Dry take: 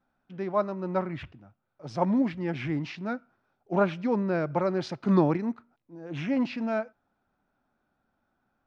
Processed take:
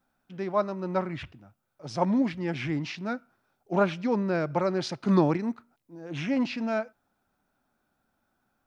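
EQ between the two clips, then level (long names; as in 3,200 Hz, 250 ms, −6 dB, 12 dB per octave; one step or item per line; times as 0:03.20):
high-shelf EQ 4,300 Hz +11 dB
0.0 dB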